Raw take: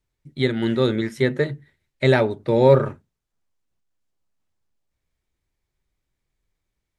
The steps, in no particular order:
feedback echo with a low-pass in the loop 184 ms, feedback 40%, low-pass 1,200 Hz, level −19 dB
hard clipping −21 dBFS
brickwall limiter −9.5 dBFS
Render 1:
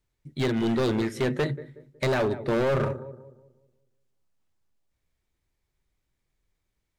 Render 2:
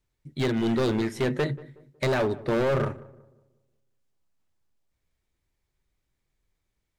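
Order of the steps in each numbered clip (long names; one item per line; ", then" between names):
feedback echo with a low-pass in the loop, then brickwall limiter, then hard clipping
brickwall limiter, then hard clipping, then feedback echo with a low-pass in the loop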